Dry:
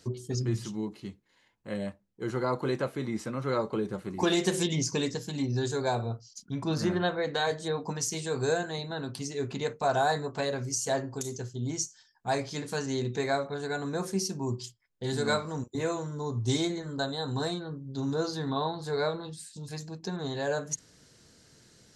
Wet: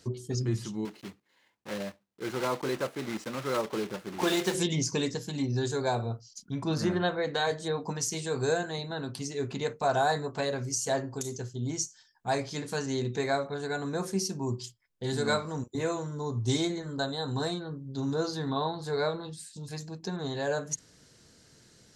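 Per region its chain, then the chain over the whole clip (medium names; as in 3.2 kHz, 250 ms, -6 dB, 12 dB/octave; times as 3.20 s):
0.85–4.55 s: block-companded coder 3-bit + high-pass 240 Hz 6 dB/octave + treble shelf 8 kHz -10 dB
whole clip: none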